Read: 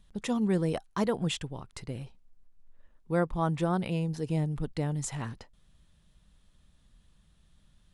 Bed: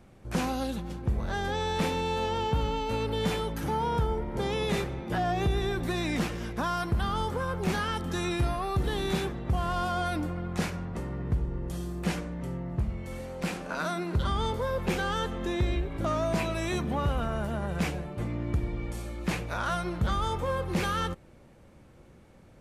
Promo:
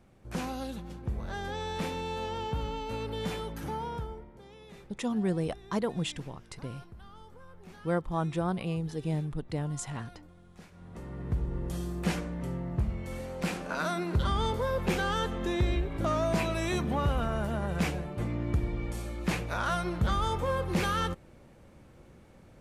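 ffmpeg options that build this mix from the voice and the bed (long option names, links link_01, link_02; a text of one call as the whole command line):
ffmpeg -i stem1.wav -i stem2.wav -filter_complex "[0:a]adelay=4750,volume=-2dB[link_01];[1:a]volume=16.5dB,afade=type=out:start_time=3.69:duration=0.7:silence=0.149624,afade=type=in:start_time=10.71:duration=0.88:silence=0.0794328[link_02];[link_01][link_02]amix=inputs=2:normalize=0" out.wav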